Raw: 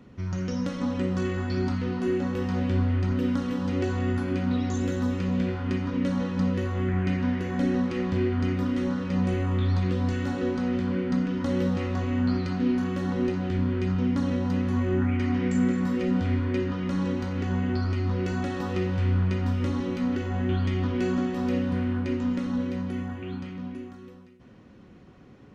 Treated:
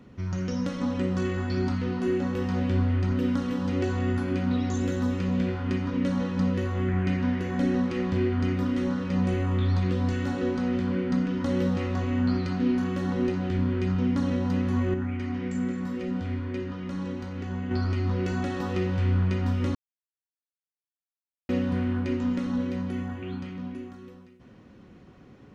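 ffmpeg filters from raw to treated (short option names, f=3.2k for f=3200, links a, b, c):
-filter_complex "[0:a]asplit=5[a][b][c][d][e];[a]atrim=end=14.942[f];[b]atrim=start=14.938:end=17.712,asetpts=PTS-STARTPTS,volume=-5.5dB[g];[c]atrim=start=17.708:end=19.75,asetpts=PTS-STARTPTS,afade=t=out:st=2.038:d=0.004:c=hsin[h];[d]atrim=start=19.75:end=21.49,asetpts=PTS-STARTPTS,volume=0[i];[e]atrim=start=21.49,asetpts=PTS-STARTPTS,afade=t=in:d=0.004:c=hsin[j];[f][g]acrossfade=d=0.004:c1=hsin:c2=hsin[k];[h][i][j]concat=n=3:v=0:a=1[l];[k][l]acrossfade=d=0.004:c1=hsin:c2=hsin"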